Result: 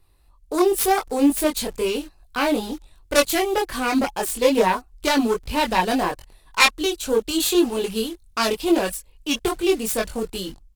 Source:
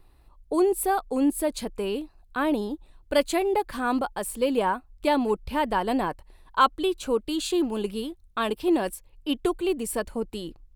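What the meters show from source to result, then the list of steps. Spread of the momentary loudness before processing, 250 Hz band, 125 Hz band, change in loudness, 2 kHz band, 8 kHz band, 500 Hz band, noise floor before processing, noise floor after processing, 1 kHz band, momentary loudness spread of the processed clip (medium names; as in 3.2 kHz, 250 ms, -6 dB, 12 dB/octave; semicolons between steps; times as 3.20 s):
10 LU, +4.0 dB, +4.0 dB, +5.0 dB, +8.5 dB, +9.0 dB, +4.0 dB, -56 dBFS, -55 dBFS, +3.0 dB, 10 LU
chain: self-modulated delay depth 0.28 ms; level rider gain up to 6.5 dB; in parallel at -9 dB: bit crusher 6-bit; on the sum: chorus voices 4, 0.84 Hz, delay 22 ms, depth 1.4 ms; peaking EQ 10 kHz +9.5 dB 2.9 oct; trim -2 dB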